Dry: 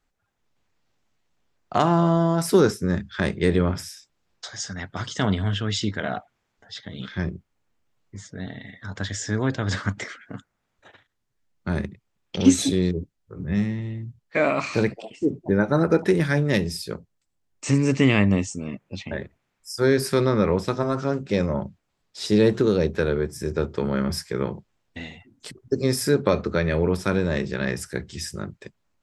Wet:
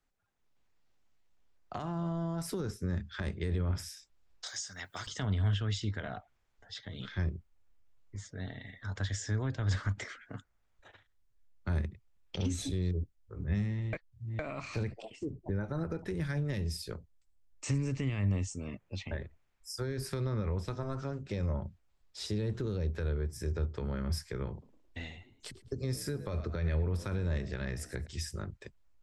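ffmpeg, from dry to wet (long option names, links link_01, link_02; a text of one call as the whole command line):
ffmpeg -i in.wav -filter_complex "[0:a]asettb=1/sr,asplit=3[link_01][link_02][link_03];[link_01]atrim=end=4.464[link_04];[link_02]atrim=start=4.46:end=5.07,asetpts=PTS-STARTPTS,afade=type=in:duration=0.004:curve=qsin,afade=type=out:start_time=0.606:duration=0.004:curve=qsin,aemphasis=mode=production:type=riaa[link_05];[link_03]atrim=start=5.066[link_06];[link_04][link_05]acrossfade=duration=0.004:curve1=hsin:curve2=qsin[link_07];[link_07][link_06]acrossfade=duration=0.004:curve1=qsin:curve2=hsin,asettb=1/sr,asplit=3[link_08][link_09][link_10];[link_08]atrim=end=24.514[link_11];[link_09]atrim=start=24.51:end=28.07,asetpts=PTS-STARTPTS,afade=type=in:duration=0.004:curve=qsin,afade=type=out:start_time=3.556:duration=0.004:curve=qsin,asplit=4[link_12][link_13][link_14][link_15];[link_13]adelay=108,afreqshift=55,volume=-18dB[link_16];[link_14]adelay=216,afreqshift=110,volume=-27.1dB[link_17];[link_15]adelay=324,afreqshift=165,volume=-36.2dB[link_18];[link_12][link_16][link_17][link_18]amix=inputs=4:normalize=0,atrim=end_sample=156996[link_19];[link_10]atrim=start=28.066[link_20];[link_11][link_19]acrossfade=duration=0.004:curve1=hsin:curve2=qsin[link_21];[link_21][link_20]acrossfade=duration=0.004:curve1=qsin:curve2=hsin,asplit=3[link_22][link_23][link_24];[link_22]atrim=end=13.932[link_25];[link_23]atrim=start=13.928:end=14.392,asetpts=PTS-STARTPTS,areverse[link_26];[link_24]atrim=start=14.388[link_27];[link_25][link_26]acrossfade=duration=0.004:curve1=hsin:curve2=hsin[link_28];[link_28][link_27]acrossfade=duration=0.004:curve1=hsin:curve2=hsin,asubboost=boost=6.5:cutoff=66,alimiter=limit=-12.5dB:level=0:latency=1:release=28,acrossover=split=190[link_29][link_30];[link_30]acompressor=threshold=-31dB:ratio=6[link_31];[link_29][link_31]amix=inputs=2:normalize=0,volume=-6.5dB" out.wav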